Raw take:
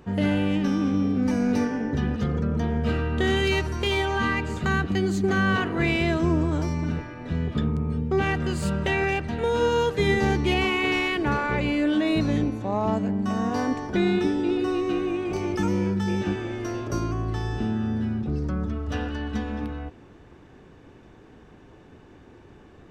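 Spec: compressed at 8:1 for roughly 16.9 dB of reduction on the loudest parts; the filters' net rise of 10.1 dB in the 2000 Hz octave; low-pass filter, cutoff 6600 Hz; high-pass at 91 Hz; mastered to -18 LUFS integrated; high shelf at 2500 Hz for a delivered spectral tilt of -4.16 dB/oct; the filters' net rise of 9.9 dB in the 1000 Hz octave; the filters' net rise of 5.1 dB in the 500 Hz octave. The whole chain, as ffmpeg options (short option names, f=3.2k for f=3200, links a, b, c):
-af "highpass=91,lowpass=6.6k,equalizer=f=500:t=o:g=4.5,equalizer=f=1k:t=o:g=8.5,equalizer=f=2k:t=o:g=7.5,highshelf=f=2.5k:g=5,acompressor=threshold=-30dB:ratio=8,volume=15dB"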